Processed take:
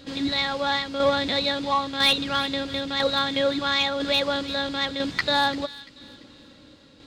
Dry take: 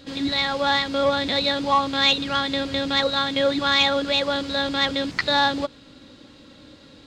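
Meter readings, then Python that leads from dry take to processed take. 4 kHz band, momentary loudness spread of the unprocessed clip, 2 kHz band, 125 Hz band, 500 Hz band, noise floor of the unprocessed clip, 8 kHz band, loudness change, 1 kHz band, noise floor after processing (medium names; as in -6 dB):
-2.0 dB, 6 LU, -2.5 dB, -2.5 dB, -2.0 dB, -49 dBFS, -1.5 dB, -2.5 dB, -3.0 dB, -51 dBFS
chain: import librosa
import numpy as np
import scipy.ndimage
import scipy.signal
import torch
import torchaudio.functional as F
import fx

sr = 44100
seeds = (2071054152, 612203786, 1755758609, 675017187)

y = fx.tremolo_shape(x, sr, shape='saw_down', hz=1.0, depth_pct=50)
y = np.clip(y, -10.0 ** (-12.0 / 20.0), 10.0 ** (-12.0 / 20.0))
y = fx.echo_wet_highpass(y, sr, ms=342, feedback_pct=36, hz=2200.0, wet_db=-14.0)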